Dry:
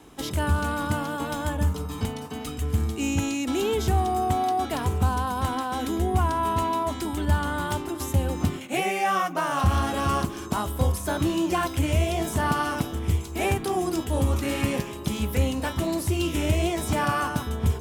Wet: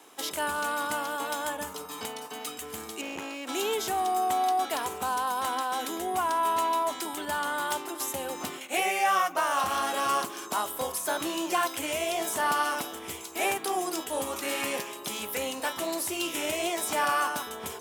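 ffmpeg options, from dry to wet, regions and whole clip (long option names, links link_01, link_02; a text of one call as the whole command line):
ffmpeg -i in.wav -filter_complex "[0:a]asettb=1/sr,asplit=3[link_01][link_02][link_03];[link_01]atrim=end=3.014[link_04];[link_02]atrim=start=3.01:end=3.49,asetpts=PTS-STARTPTS,afade=type=in:duration=0.004:curve=qsin,afade=type=out:start_time=0.476:duration=0.004:curve=qsin,acrossover=split=2700[link_05][link_06];[link_06]acompressor=threshold=-45dB:ratio=4:attack=1:release=60[link_07];[link_05][link_07]amix=inputs=2:normalize=0,aeval=exprs='clip(val(0),-1,0.0188)':channel_layout=same[link_08];[link_03]atrim=start=3.486[link_09];[link_04][link_08]acrossfade=duration=0.004:curve1=hsin:curve2=qsin[link_10];[link_10][link_09]acrossfade=duration=0.004:curve1=qsin:curve2=hsin,highpass=510,highshelf=frequency=7100:gain=5" out.wav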